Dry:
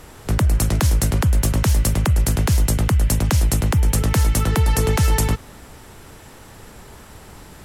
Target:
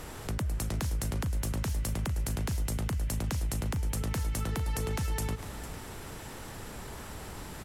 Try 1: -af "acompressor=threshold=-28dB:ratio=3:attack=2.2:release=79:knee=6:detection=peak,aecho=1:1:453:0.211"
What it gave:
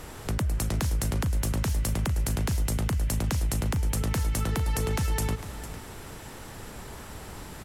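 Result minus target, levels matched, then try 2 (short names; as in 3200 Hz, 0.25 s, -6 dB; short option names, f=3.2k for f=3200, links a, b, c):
compressor: peak gain reduction -4.5 dB
-af "acompressor=threshold=-35dB:ratio=3:attack=2.2:release=79:knee=6:detection=peak,aecho=1:1:453:0.211"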